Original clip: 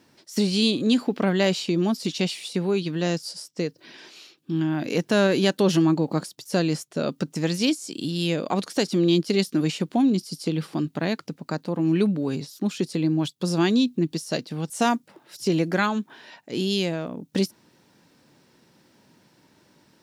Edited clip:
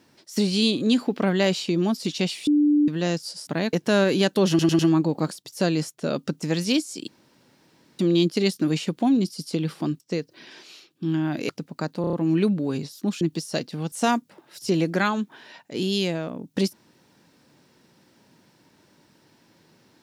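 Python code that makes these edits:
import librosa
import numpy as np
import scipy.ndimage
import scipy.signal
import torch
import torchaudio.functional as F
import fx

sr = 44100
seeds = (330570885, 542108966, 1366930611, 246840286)

y = fx.edit(x, sr, fx.bleep(start_s=2.47, length_s=0.41, hz=295.0, db=-15.0),
    fx.swap(start_s=3.47, length_s=1.49, other_s=10.93, other_length_s=0.26),
    fx.stutter(start_s=5.72, slice_s=0.1, count=4),
    fx.room_tone_fill(start_s=8.01, length_s=0.91),
    fx.stutter(start_s=11.71, slice_s=0.03, count=5),
    fx.cut(start_s=12.79, length_s=1.2), tone=tone)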